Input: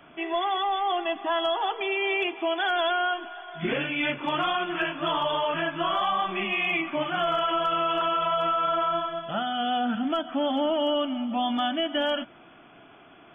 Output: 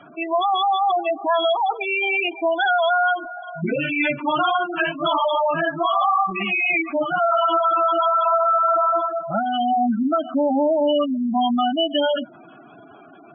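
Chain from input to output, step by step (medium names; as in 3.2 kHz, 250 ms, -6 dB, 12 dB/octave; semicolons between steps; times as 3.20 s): spectral gate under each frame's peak -10 dB strong; dynamic bell 380 Hz, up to -8 dB, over -48 dBFS, Q 4.4; trim +8 dB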